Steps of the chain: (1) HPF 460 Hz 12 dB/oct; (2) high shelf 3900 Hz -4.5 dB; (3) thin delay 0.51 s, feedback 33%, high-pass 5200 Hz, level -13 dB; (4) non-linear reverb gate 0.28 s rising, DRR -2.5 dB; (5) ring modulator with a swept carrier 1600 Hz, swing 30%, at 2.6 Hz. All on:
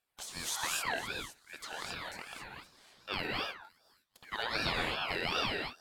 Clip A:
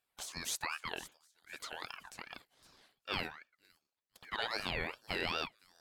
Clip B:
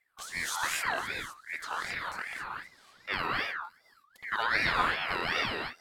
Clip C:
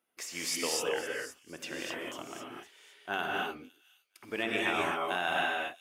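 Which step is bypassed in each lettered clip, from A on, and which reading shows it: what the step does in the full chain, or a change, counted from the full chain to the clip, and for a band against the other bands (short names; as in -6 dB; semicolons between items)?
4, momentary loudness spread change +2 LU; 1, 2 kHz band +6.5 dB; 5, 125 Hz band -8.0 dB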